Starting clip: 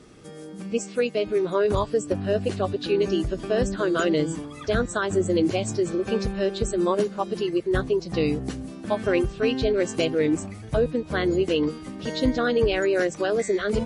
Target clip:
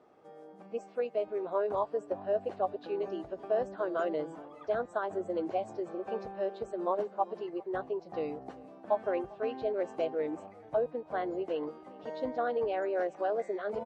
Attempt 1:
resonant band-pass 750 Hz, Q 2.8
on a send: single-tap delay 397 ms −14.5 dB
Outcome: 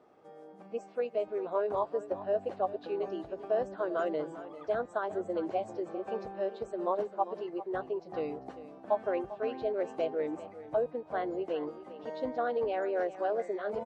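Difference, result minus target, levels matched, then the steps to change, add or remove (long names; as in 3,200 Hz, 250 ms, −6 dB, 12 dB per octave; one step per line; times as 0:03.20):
echo-to-direct +8.5 dB
change: single-tap delay 397 ms −23 dB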